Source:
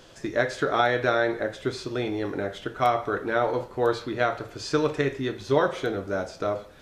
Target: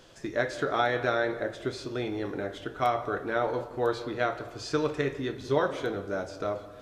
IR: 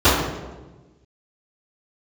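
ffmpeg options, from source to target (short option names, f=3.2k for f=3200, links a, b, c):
-filter_complex "[0:a]asplit=2[a][b];[1:a]atrim=start_sample=2205,adelay=150[c];[b][c]afir=irnorm=-1:irlink=0,volume=-42.5dB[d];[a][d]amix=inputs=2:normalize=0,volume=-4dB"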